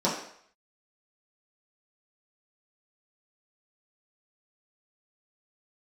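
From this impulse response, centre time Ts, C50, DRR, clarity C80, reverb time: 39 ms, 5.0 dB, −8.0 dB, 8.0 dB, 0.65 s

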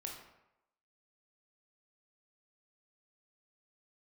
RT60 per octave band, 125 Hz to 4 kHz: 0.75, 0.75, 0.85, 0.90, 0.75, 0.55 seconds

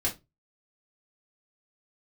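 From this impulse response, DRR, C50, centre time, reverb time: −4.5 dB, 14.0 dB, 16 ms, 0.20 s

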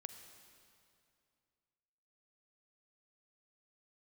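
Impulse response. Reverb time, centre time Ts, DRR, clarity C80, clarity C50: 2.5 s, 31 ms, 8.0 dB, 9.0 dB, 8.0 dB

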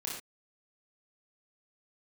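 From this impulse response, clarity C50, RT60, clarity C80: 2.0 dB, non-exponential decay, 6.0 dB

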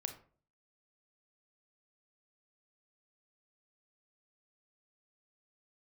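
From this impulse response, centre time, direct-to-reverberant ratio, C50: 12 ms, 6.5 dB, 10.5 dB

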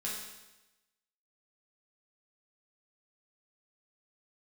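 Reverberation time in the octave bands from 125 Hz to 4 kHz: 1.0, 1.0, 1.0, 1.0, 1.0, 1.0 seconds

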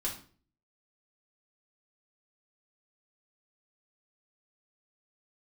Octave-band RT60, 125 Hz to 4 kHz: 0.60, 0.55, 0.50, 0.40, 0.35, 0.35 seconds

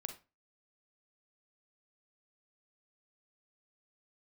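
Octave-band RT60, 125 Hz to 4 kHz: 0.35, 0.30, 0.30, 0.30, 0.25, 0.25 seconds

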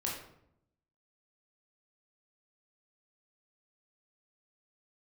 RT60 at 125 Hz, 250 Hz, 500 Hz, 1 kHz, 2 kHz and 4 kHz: 1.1, 1.0, 0.80, 0.65, 0.55, 0.45 seconds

